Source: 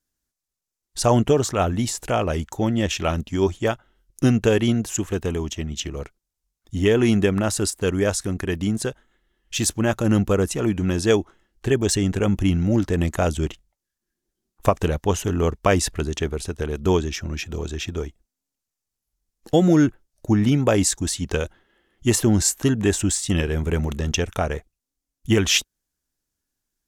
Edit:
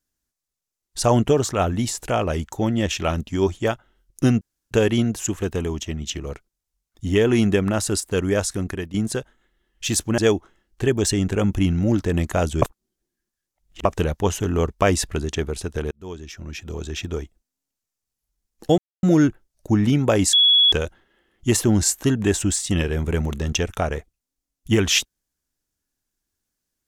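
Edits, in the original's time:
0:04.41: splice in room tone 0.30 s
0:08.38–0:08.64: fade out, to −14 dB
0:09.88–0:11.02: remove
0:13.46–0:14.69: reverse
0:16.75–0:17.86: fade in
0:19.62: splice in silence 0.25 s
0:20.92–0:21.31: beep over 3,370 Hz −11.5 dBFS

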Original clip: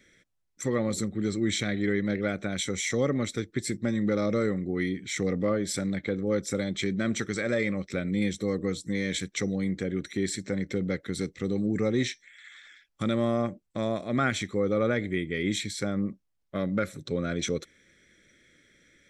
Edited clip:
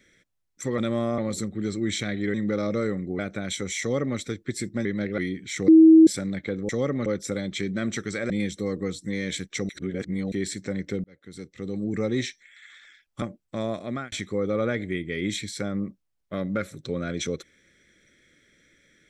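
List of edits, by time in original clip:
0:01.94–0:02.27: swap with 0:03.93–0:04.78
0:02.89–0:03.26: duplicate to 0:06.29
0:05.28–0:05.67: beep over 321 Hz −8.5 dBFS
0:07.53–0:08.12: remove
0:09.51–0:10.14: reverse
0:10.86–0:11.82: fade in
0:13.04–0:13.44: move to 0:00.78
0:14.05–0:14.34: fade out

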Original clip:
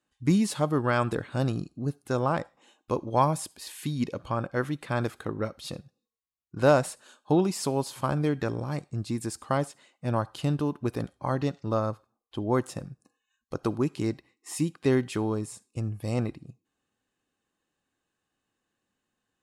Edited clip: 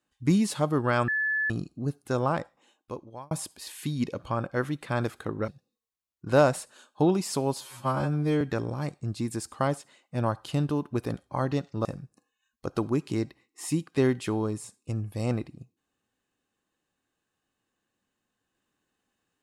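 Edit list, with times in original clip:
0:01.08–0:01.50: beep over 1,730 Hz −24 dBFS
0:02.27–0:03.31: fade out
0:05.48–0:05.78: remove
0:07.91–0:08.31: time-stretch 2×
0:11.75–0:12.73: remove

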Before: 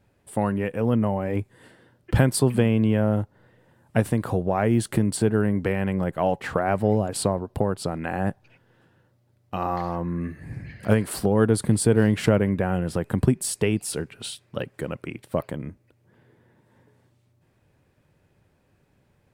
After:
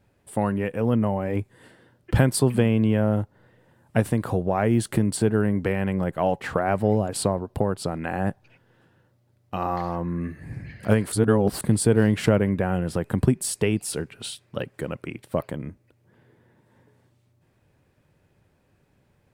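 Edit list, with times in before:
0:11.12–0:11.61: reverse

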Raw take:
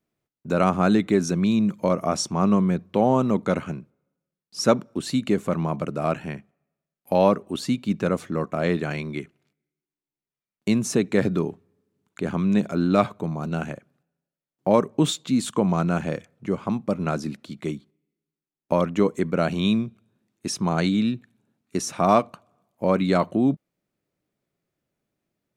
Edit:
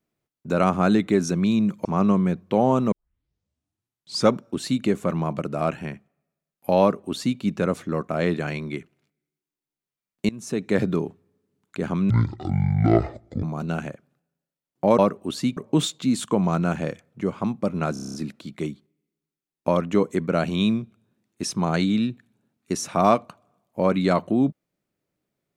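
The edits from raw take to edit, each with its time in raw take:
0:01.85–0:02.28: remove
0:03.35: tape start 1.42 s
0:07.24–0:07.82: duplicate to 0:14.82
0:10.72–0:11.23: fade in, from −23 dB
0:12.53–0:13.26: play speed 55%
0:17.18: stutter 0.03 s, 8 plays

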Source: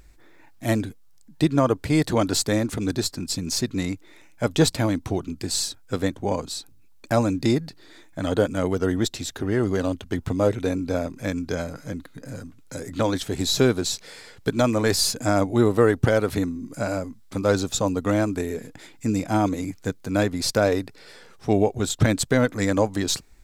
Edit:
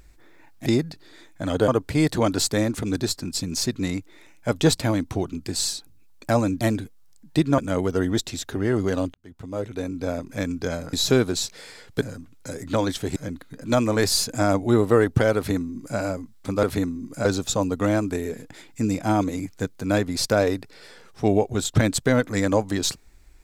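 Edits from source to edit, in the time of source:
0:00.66–0:01.63: swap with 0:07.43–0:08.45
0:05.69–0:06.56: remove
0:10.01–0:11.22: fade in
0:11.80–0:12.28: swap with 0:13.42–0:14.51
0:16.23–0:16.85: duplicate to 0:17.50

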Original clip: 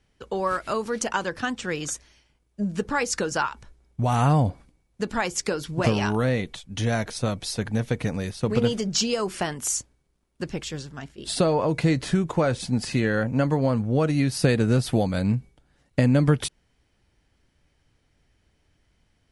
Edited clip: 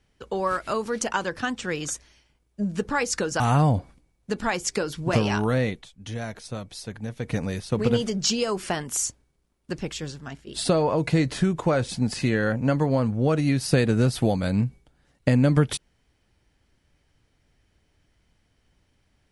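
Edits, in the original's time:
0:03.40–0:04.11: remove
0:06.39–0:08.05: duck −8 dB, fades 0.15 s

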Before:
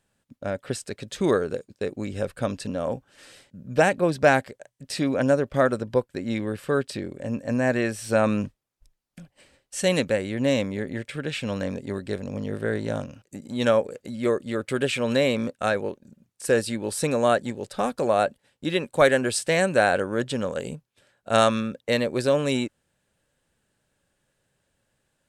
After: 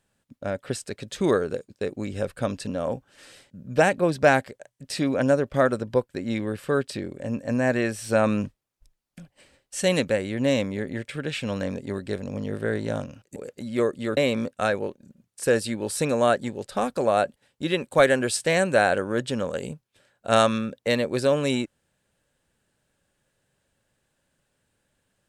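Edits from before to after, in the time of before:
0:13.36–0:13.83: remove
0:14.64–0:15.19: remove

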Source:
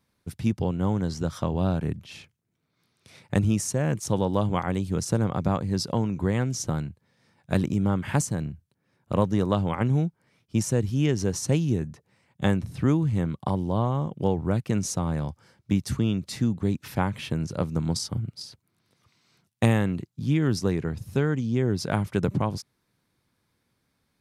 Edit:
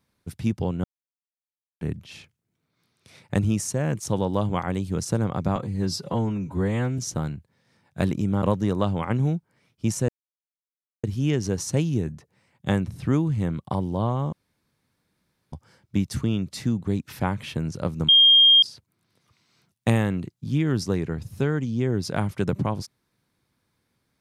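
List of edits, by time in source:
0:00.84–0:01.81: silence
0:05.56–0:06.51: time-stretch 1.5×
0:07.95–0:09.13: remove
0:10.79: splice in silence 0.95 s
0:14.08–0:15.28: fill with room tone
0:17.84–0:18.38: beep over 3,220 Hz −11 dBFS

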